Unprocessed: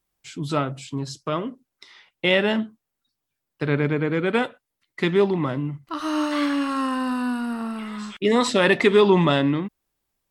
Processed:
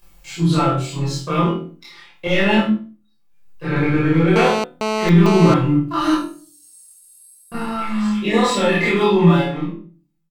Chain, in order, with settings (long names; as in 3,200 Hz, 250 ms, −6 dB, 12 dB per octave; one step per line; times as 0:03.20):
fade-out on the ending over 3.01 s
0:06.11–0:07.52: inverse Chebyshev high-pass filter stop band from 2,200 Hz, stop band 70 dB
comb filter 5.8 ms, depth 91%
upward compression, threshold −39 dBFS
leveller curve on the samples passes 1
brickwall limiter −11 dBFS, peak gain reduction 10 dB
flutter between parallel walls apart 4.1 metres, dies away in 0.33 s
convolution reverb RT60 0.35 s, pre-delay 17 ms, DRR −8 dB
0:02.27–0:03.76: multiband upward and downward expander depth 40%
0:04.36–0:05.54: phone interference −12 dBFS
level −8.5 dB